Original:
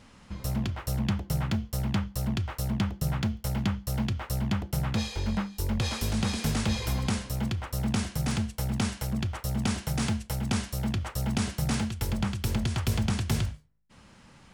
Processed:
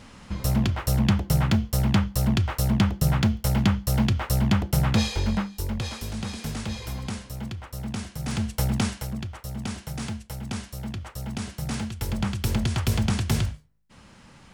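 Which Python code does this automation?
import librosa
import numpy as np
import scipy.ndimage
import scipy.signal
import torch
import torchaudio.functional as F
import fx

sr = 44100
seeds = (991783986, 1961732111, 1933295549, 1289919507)

y = fx.gain(x, sr, db=fx.line((5.07, 7.0), (6.03, -4.0), (8.18, -4.0), (8.58, 7.0), (9.29, -4.0), (11.47, -4.0), (12.4, 3.5)))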